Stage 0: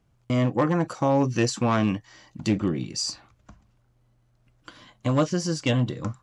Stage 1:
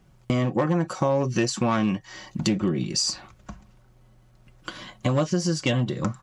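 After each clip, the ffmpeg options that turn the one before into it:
ffmpeg -i in.wav -af "aecho=1:1:5.4:0.43,acompressor=threshold=-32dB:ratio=3,volume=9dB" out.wav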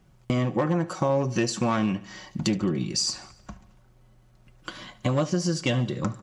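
ffmpeg -i in.wav -af "aecho=1:1:73|146|219|292|365:0.119|0.0642|0.0347|0.0187|0.0101,volume=-1.5dB" out.wav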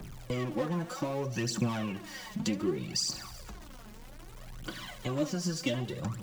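ffmpeg -i in.wav -filter_complex "[0:a]aeval=exprs='val(0)+0.5*0.0141*sgn(val(0))':channel_layout=same,aphaser=in_gain=1:out_gain=1:delay=4.9:decay=0.62:speed=0.64:type=triangular,acrossover=split=130|580|2200[link_01][link_02][link_03][link_04];[link_03]asoftclip=type=hard:threshold=-33dB[link_05];[link_01][link_02][link_05][link_04]amix=inputs=4:normalize=0,volume=-8dB" out.wav

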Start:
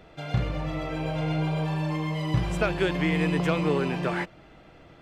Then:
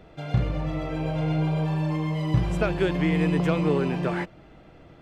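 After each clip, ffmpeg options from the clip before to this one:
ffmpeg -i in.wav -af "tiltshelf=frequency=740:gain=3" out.wav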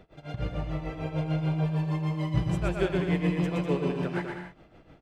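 ffmpeg -i in.wav -af "tremolo=f=6.7:d=0.93,aecho=1:1:120|198|248.7|281.7|303.1:0.631|0.398|0.251|0.158|0.1,volume=-2.5dB" out.wav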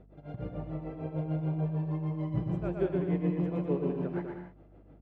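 ffmpeg -i in.wav -af "bandpass=frequency=300:width_type=q:width=0.63:csg=0,aeval=exprs='val(0)+0.00178*(sin(2*PI*50*n/s)+sin(2*PI*2*50*n/s)/2+sin(2*PI*3*50*n/s)/3+sin(2*PI*4*50*n/s)/4+sin(2*PI*5*50*n/s)/5)':channel_layout=same,volume=-1.5dB" out.wav

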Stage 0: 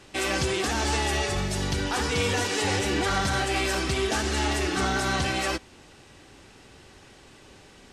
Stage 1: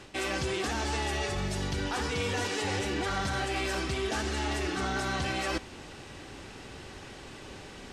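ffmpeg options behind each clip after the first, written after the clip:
ffmpeg -i in.wav -af "highshelf=frequency=6600:gain=-5.5,areverse,acompressor=threshold=-37dB:ratio=4,areverse,volume=6dB" out.wav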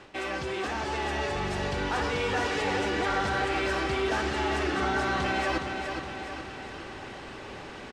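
ffmpeg -i in.wav -filter_complex "[0:a]aecho=1:1:416|832|1248|1664|2080|2496|2912:0.447|0.246|0.135|0.0743|0.0409|0.0225|0.0124,asplit=2[link_01][link_02];[link_02]highpass=frequency=720:poles=1,volume=9dB,asoftclip=type=tanh:threshold=-18dB[link_03];[link_01][link_03]amix=inputs=2:normalize=0,lowpass=frequency=1400:poles=1,volume=-6dB,dynaudnorm=framelen=200:gausssize=13:maxgain=3.5dB" out.wav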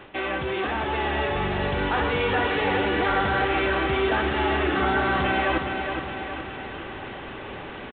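ffmpeg -i in.wav -af "aresample=8000,aresample=44100,volume=5dB" out.wav

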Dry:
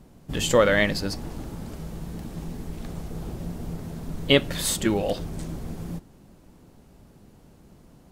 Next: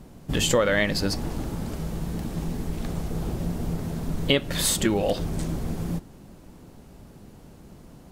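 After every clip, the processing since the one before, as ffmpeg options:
ffmpeg -i in.wav -af "acompressor=threshold=-25dB:ratio=3,volume=5dB" out.wav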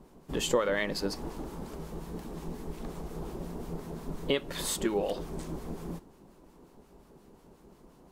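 ffmpeg -i in.wav -filter_complex "[0:a]equalizer=frequency=100:width_type=o:width=0.67:gain=-11,equalizer=frequency=400:width_type=o:width=0.67:gain=7,equalizer=frequency=1000:width_type=o:width=0.67:gain=7,acrossover=split=1100[link_01][link_02];[link_01]aeval=exprs='val(0)*(1-0.5/2+0.5/2*cos(2*PI*5.6*n/s))':channel_layout=same[link_03];[link_02]aeval=exprs='val(0)*(1-0.5/2-0.5/2*cos(2*PI*5.6*n/s))':channel_layout=same[link_04];[link_03][link_04]amix=inputs=2:normalize=0,volume=-7.5dB" out.wav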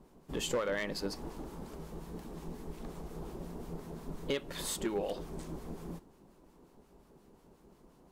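ffmpeg -i in.wav -af "volume=22dB,asoftclip=hard,volume=-22dB,volume=-4.5dB" out.wav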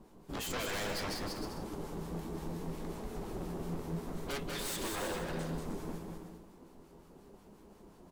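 ffmpeg -i in.wav -af "aeval=exprs='0.0158*(abs(mod(val(0)/0.0158+3,4)-2)-1)':channel_layout=same,flanger=delay=9.2:depth=3.1:regen=51:speed=0.66:shape=sinusoidal,aecho=1:1:190|313.5|393.8|446|479.9:0.631|0.398|0.251|0.158|0.1,volume=6dB" out.wav

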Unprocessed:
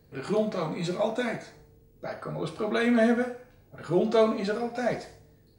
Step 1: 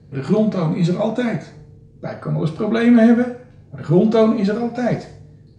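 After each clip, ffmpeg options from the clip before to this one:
ffmpeg -i in.wav -af "lowpass=frequency=8300:width=0.5412,lowpass=frequency=8300:width=1.3066,equalizer=frequency=140:width_type=o:width=2.1:gain=13,volume=4dB" out.wav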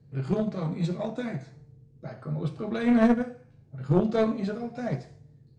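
ffmpeg -i in.wav -af "equalizer=frequency=130:width_type=o:width=0.22:gain=12,aeval=exprs='0.841*(cos(1*acos(clip(val(0)/0.841,-1,1)))-cos(1*PI/2))+0.168*(cos(3*acos(clip(val(0)/0.841,-1,1)))-cos(3*PI/2))':channel_layout=same,volume=-5.5dB" out.wav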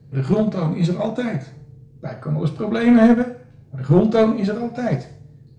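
ffmpeg -i in.wav -af "acontrast=90,volume=2dB" out.wav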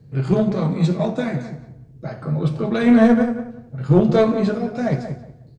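ffmpeg -i in.wav -filter_complex "[0:a]asplit=2[link_01][link_02];[link_02]adelay=183,lowpass=frequency=1700:poles=1,volume=-9dB,asplit=2[link_03][link_04];[link_04]adelay=183,lowpass=frequency=1700:poles=1,volume=0.25,asplit=2[link_05][link_06];[link_06]adelay=183,lowpass=frequency=1700:poles=1,volume=0.25[link_07];[link_01][link_03][link_05][link_07]amix=inputs=4:normalize=0" out.wav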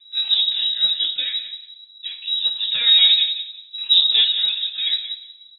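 ffmpeg -i in.wav -af "lowpass=frequency=3400:width_type=q:width=0.5098,lowpass=frequency=3400:width_type=q:width=0.6013,lowpass=frequency=3400:width_type=q:width=0.9,lowpass=frequency=3400:width_type=q:width=2.563,afreqshift=-4000,volume=-1.5dB" out.wav

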